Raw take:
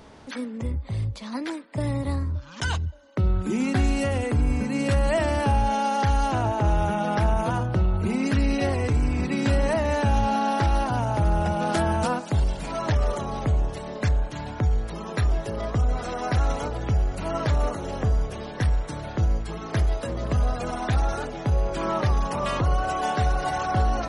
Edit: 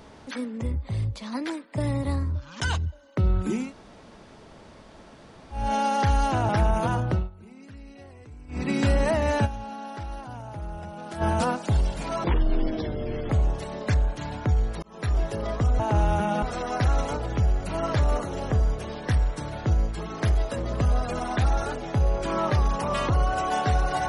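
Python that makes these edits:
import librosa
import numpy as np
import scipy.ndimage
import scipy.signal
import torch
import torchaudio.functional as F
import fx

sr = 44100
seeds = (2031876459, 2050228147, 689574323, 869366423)

y = fx.edit(x, sr, fx.room_tone_fill(start_s=3.62, length_s=2.0, crossfade_s=0.24),
    fx.move(start_s=6.49, length_s=0.63, to_s=15.94),
    fx.fade_down_up(start_s=7.74, length_s=1.56, db=-22.5, fade_s=0.19),
    fx.fade_down_up(start_s=10.08, length_s=1.77, db=-13.5, fade_s=0.15, curve='exp'),
    fx.speed_span(start_s=12.87, length_s=0.57, speed=0.54),
    fx.fade_in_span(start_s=14.97, length_s=0.37), tone=tone)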